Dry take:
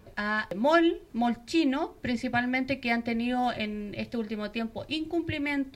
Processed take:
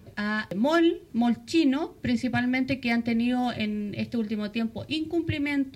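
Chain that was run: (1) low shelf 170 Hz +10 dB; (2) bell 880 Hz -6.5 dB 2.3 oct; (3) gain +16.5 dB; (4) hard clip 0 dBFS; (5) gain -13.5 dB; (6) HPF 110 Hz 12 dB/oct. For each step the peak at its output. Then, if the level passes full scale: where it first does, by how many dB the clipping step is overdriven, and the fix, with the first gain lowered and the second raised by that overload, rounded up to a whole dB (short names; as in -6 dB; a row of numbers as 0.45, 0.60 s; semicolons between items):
-9.0, -12.0, +4.5, 0.0, -13.5, -12.5 dBFS; step 3, 4.5 dB; step 3 +11.5 dB, step 5 -8.5 dB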